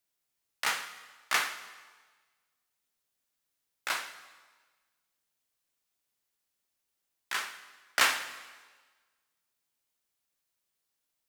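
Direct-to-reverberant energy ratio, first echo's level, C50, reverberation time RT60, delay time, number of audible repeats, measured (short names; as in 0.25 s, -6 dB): 9.5 dB, none, 11.5 dB, 1.4 s, none, none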